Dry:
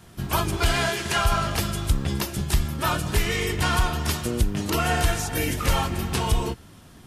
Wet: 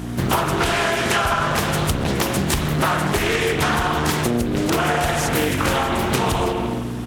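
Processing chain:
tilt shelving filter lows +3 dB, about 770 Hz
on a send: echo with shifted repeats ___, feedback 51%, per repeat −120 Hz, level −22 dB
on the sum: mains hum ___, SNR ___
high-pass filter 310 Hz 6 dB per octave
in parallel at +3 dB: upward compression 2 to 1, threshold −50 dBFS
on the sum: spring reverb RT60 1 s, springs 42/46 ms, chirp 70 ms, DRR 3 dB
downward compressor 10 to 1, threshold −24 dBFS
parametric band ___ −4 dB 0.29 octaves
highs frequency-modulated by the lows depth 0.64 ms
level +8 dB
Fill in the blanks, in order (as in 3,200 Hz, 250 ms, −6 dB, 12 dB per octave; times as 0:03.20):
134 ms, 60 Hz, 13 dB, 4,400 Hz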